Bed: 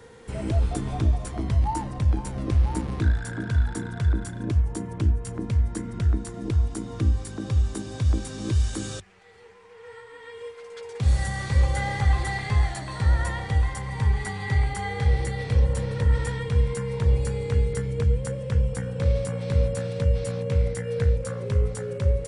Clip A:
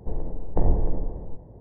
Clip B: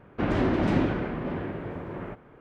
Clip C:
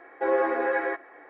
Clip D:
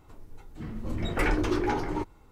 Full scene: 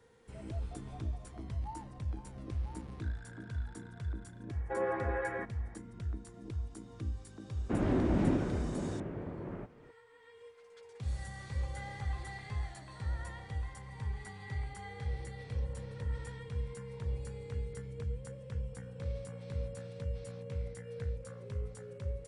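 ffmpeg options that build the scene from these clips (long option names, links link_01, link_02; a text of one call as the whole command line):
ffmpeg -i bed.wav -i cue0.wav -i cue1.wav -i cue2.wav -filter_complex "[0:a]volume=-16dB[link_01];[2:a]tiltshelf=frequency=780:gain=4.5[link_02];[3:a]atrim=end=1.29,asetpts=PTS-STARTPTS,volume=-10dB,afade=type=in:duration=0.004:curve=hsin,afade=type=out:start_time=1.286:duration=0.004:curve=hsin,adelay=198009S[link_03];[link_02]atrim=end=2.4,asetpts=PTS-STARTPTS,volume=-8.5dB,afade=type=in:duration=0.004:curve=hsin,afade=type=out:start_time=2.396:duration=0.004:curve=hsin,adelay=7510[link_04];[link_01][link_03][link_04]amix=inputs=3:normalize=0" out.wav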